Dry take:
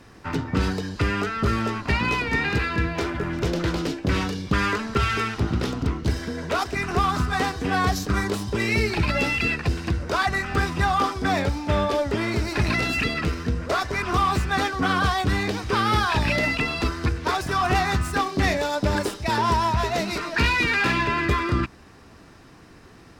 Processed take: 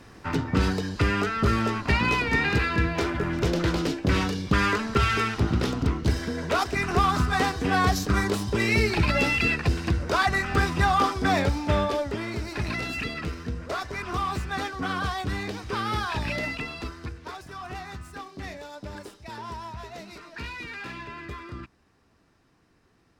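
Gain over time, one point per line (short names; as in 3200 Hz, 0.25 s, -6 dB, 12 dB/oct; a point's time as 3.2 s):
11.65 s 0 dB
12.24 s -7 dB
16.42 s -7 dB
17.48 s -16 dB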